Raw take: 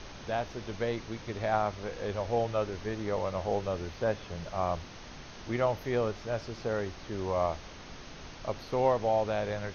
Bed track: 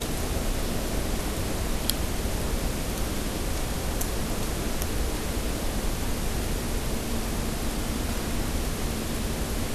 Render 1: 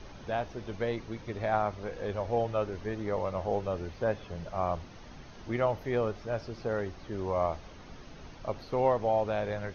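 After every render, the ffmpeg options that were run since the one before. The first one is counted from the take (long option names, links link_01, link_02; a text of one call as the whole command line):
ffmpeg -i in.wav -af "afftdn=noise_reduction=8:noise_floor=-47" out.wav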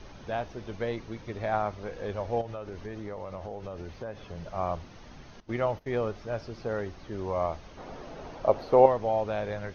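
ffmpeg -i in.wav -filter_complex "[0:a]asettb=1/sr,asplit=3[link_01][link_02][link_03];[link_01]atrim=end=2.414[link_04];[link_02]atrim=start=2.41:end=4.46,asetpts=PTS-STARTPTS,afade=type=in:duration=0.004:curve=qsin,afade=type=out:start_time=2.046:duration=0.004:curve=qsin,acompressor=threshold=-34dB:ratio=6:attack=3.2:release=140:knee=1:detection=peak[link_05];[link_03]atrim=start=4.456[link_06];[link_04][link_05]acrossfade=duration=0.004:curve1=hsin:curve2=qsin[link_07];[link_07][link_06]acrossfade=duration=0.004:curve1=qsin:curve2=hsin,asettb=1/sr,asplit=3[link_08][link_09][link_10];[link_08]atrim=end=5.404[link_11];[link_09]atrim=start=5.4:end=6.03,asetpts=PTS-STARTPTS,afade=type=in:duration=0.004:curve=qsin,afade=type=out:start_time=0.626:duration=0.004:curve=qsin,agate=range=-17dB:threshold=-42dB:ratio=16:release=100:detection=peak[link_12];[link_10]atrim=start=6.026[link_13];[link_11][link_12]acrossfade=duration=0.004:curve1=hsin:curve2=qsin[link_14];[link_14][link_13]acrossfade=duration=0.004:curve1=qsin:curve2=hsin,asettb=1/sr,asplit=3[link_15][link_16][link_17];[link_15]atrim=end=7.774[link_18];[link_16]atrim=start=7.77:end=8.86,asetpts=PTS-STARTPTS,afade=type=in:duration=0.004:curve=qsin,afade=type=out:start_time=1.086:duration=0.004:curve=qsin,equalizer=frequency=610:width=0.65:gain=12.5[link_19];[link_17]atrim=start=8.856[link_20];[link_18][link_19]acrossfade=duration=0.004:curve1=hsin:curve2=qsin[link_21];[link_21][link_20]acrossfade=duration=0.004:curve1=qsin:curve2=hsin" out.wav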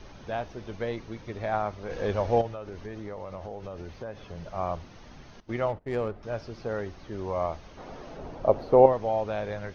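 ffmpeg -i in.wav -filter_complex "[0:a]asplit=3[link_01][link_02][link_03];[link_01]afade=type=out:start_time=1.89:duration=0.02[link_04];[link_02]acontrast=53,afade=type=in:start_time=1.89:duration=0.02,afade=type=out:start_time=2.47:duration=0.02[link_05];[link_03]afade=type=in:start_time=2.47:duration=0.02[link_06];[link_04][link_05][link_06]amix=inputs=3:normalize=0,asettb=1/sr,asplit=3[link_07][link_08][link_09];[link_07]atrim=end=5.684[link_10];[link_08]atrim=start=5.68:end=6.23,asetpts=PTS-STARTPTS,afade=type=in:duration=0.004:curve=qsin,afade=type=out:start_time=0.546:duration=0.004:curve=qsin,adynamicsmooth=sensitivity=5.5:basefreq=1300[link_11];[link_09]atrim=start=6.226[link_12];[link_10][link_11]acrossfade=duration=0.004:curve1=hsin:curve2=qsin[link_13];[link_13][link_12]acrossfade=duration=0.004:curve1=qsin:curve2=hsin,asettb=1/sr,asplit=3[link_14][link_15][link_16];[link_14]atrim=end=8.174[link_17];[link_15]atrim=start=8.17:end=8.93,asetpts=PTS-STARTPTS,afade=type=in:duration=0.004:curve=qsin,afade=type=out:start_time=0.756:duration=0.004:curve=qsin,tiltshelf=frequency=800:gain=4.5[link_18];[link_16]atrim=start=8.926[link_19];[link_17][link_18]acrossfade=duration=0.004:curve1=hsin:curve2=qsin[link_20];[link_20][link_19]acrossfade=duration=0.004:curve1=qsin:curve2=hsin" out.wav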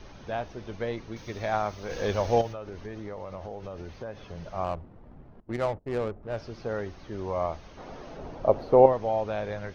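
ffmpeg -i in.wav -filter_complex "[0:a]asettb=1/sr,asplit=3[link_01][link_02][link_03];[link_01]atrim=end=1.164[link_04];[link_02]atrim=start=1.16:end=2.53,asetpts=PTS-STARTPTS,afade=type=in:duration=0.004:curve=qsin,afade=type=out:start_time=1.366:duration=0.004:curve=qsin,aemphasis=mode=production:type=75kf[link_05];[link_03]atrim=start=2.526[link_06];[link_04][link_05]acrossfade=duration=0.004:curve1=hsin:curve2=qsin[link_07];[link_07][link_06]acrossfade=duration=0.004:curve1=qsin:curve2=hsin,asettb=1/sr,asplit=3[link_08][link_09][link_10];[link_08]atrim=end=4.644[link_11];[link_09]atrim=start=4.64:end=6.37,asetpts=PTS-STARTPTS,afade=type=in:duration=0.004:curve=qsin,afade=type=out:start_time=1.726:duration=0.004:curve=qsin,adynamicsmooth=sensitivity=4.5:basefreq=650[link_12];[link_10]atrim=start=6.366[link_13];[link_11][link_12]acrossfade=duration=0.004:curve1=hsin:curve2=qsin[link_14];[link_14][link_13]acrossfade=duration=0.004:curve1=qsin:curve2=hsin" out.wav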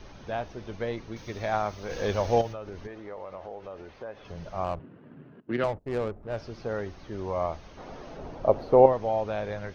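ffmpeg -i in.wav -filter_complex "[0:a]asettb=1/sr,asplit=3[link_01][link_02][link_03];[link_01]atrim=end=2.874[link_04];[link_02]atrim=start=2.87:end=4.25,asetpts=PTS-STARTPTS,afade=type=in:duration=0.004:curve=qsin,afade=type=out:start_time=1.376:duration=0.004:curve=qsin,bass=frequency=250:gain=-11,treble=frequency=4000:gain=-9[link_05];[link_03]atrim=start=4.246[link_06];[link_04][link_05]acrossfade=duration=0.004:curve1=hsin:curve2=qsin[link_07];[link_07][link_06]acrossfade=duration=0.004:curve1=qsin:curve2=hsin,asettb=1/sr,asplit=3[link_08][link_09][link_10];[link_08]atrim=end=4.794[link_11];[link_09]atrim=start=4.79:end=5.64,asetpts=PTS-STARTPTS,afade=type=in:duration=0.004:curve=qsin,afade=type=out:start_time=0.846:duration=0.004:curve=qsin,highpass=frequency=120:width=0.5412,highpass=frequency=120:width=1.3066,equalizer=frequency=150:width_type=q:width=4:gain=5,equalizer=frequency=270:width_type=q:width=4:gain=7,equalizer=frequency=400:width_type=q:width=4:gain=5,equalizer=frequency=790:width_type=q:width=4:gain=-7,equalizer=frequency=1600:width_type=q:width=4:gain=9,equalizer=frequency=2800:width_type=q:width=4:gain=9,lowpass=frequency=4400:width=0.5412,lowpass=frequency=4400:width=1.3066[link_12];[link_10]atrim=start=5.636[link_13];[link_11][link_12]acrossfade=duration=0.004:curve1=hsin:curve2=qsin[link_14];[link_14][link_13]acrossfade=duration=0.004:curve1=qsin:curve2=hsin" out.wav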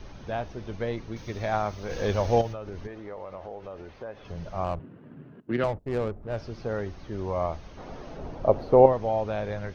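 ffmpeg -i in.wav -af "lowshelf=frequency=220:gain=5" out.wav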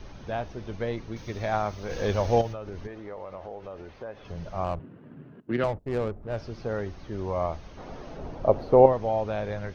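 ffmpeg -i in.wav -af anull out.wav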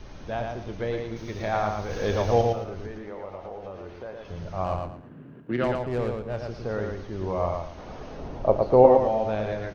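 ffmpeg -i in.wav -filter_complex "[0:a]asplit=2[link_01][link_02];[link_02]adelay=32,volume=-12.5dB[link_03];[link_01][link_03]amix=inputs=2:normalize=0,aecho=1:1:113|226|339|452:0.631|0.17|0.046|0.0124" out.wav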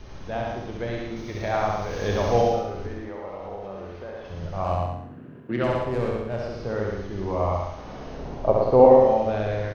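ffmpeg -i in.wav -filter_complex "[0:a]asplit=2[link_01][link_02];[link_02]adelay=31,volume=-11dB[link_03];[link_01][link_03]amix=inputs=2:normalize=0,aecho=1:1:67|134|201|268|335:0.708|0.29|0.119|0.0488|0.02" out.wav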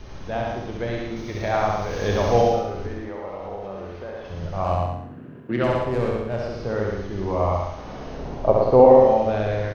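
ffmpeg -i in.wav -af "volume=2.5dB,alimiter=limit=-2dB:level=0:latency=1" out.wav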